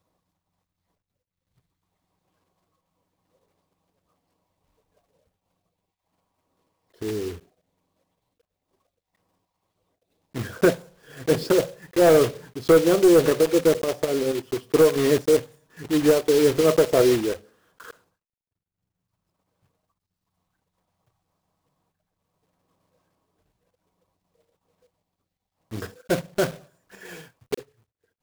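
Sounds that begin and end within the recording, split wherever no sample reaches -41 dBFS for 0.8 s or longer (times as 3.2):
7.02–7.38
10.35–17.91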